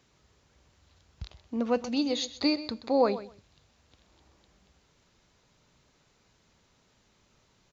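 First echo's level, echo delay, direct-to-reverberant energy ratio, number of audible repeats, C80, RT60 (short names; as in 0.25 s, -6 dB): -14.5 dB, 0.127 s, none, 2, none, none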